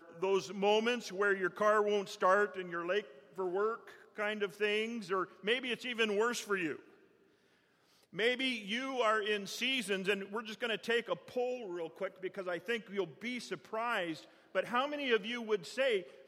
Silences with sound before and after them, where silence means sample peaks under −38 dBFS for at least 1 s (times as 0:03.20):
0:06.76–0:08.17